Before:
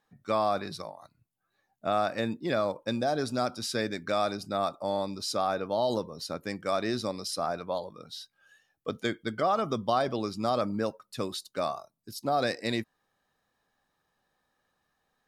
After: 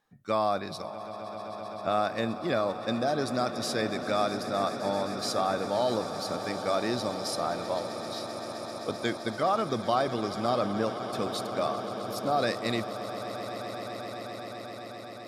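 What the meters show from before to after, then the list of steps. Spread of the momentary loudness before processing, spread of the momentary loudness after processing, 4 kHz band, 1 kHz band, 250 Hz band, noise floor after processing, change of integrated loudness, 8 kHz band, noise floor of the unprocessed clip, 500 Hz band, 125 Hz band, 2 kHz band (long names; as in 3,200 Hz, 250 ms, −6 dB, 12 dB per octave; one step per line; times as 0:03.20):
11 LU, 11 LU, +1.5 dB, +1.5 dB, +1.5 dB, −41 dBFS, 0.0 dB, +1.5 dB, −79 dBFS, +1.5 dB, +1.0 dB, +1.5 dB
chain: echo that builds up and dies away 130 ms, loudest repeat 8, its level −16 dB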